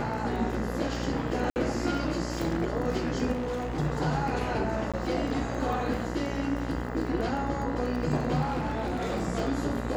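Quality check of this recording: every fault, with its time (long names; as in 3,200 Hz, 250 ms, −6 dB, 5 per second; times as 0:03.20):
mains buzz 60 Hz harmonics 34 −34 dBFS
surface crackle 17 per second −35 dBFS
0:01.50–0:01.56: drop-out 59 ms
0:03.32–0:03.80: clipping −28 dBFS
0:04.92–0:04.94: drop-out 16 ms
0:08.43–0:09.24: clipping −25.5 dBFS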